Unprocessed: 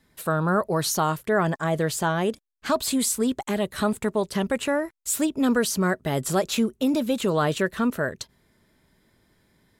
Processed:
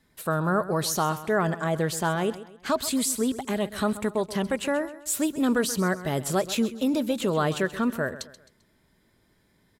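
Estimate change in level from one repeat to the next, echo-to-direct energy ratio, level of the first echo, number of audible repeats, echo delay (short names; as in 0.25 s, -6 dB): -8.5 dB, -14.5 dB, -15.0 dB, 3, 0.131 s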